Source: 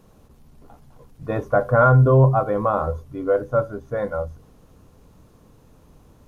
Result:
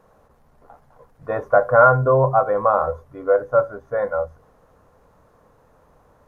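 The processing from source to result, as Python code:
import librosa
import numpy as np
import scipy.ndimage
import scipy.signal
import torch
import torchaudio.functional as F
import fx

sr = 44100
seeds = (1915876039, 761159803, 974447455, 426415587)

y = fx.band_shelf(x, sr, hz=960.0, db=12.0, octaves=2.4)
y = F.gain(torch.from_numpy(y), -8.0).numpy()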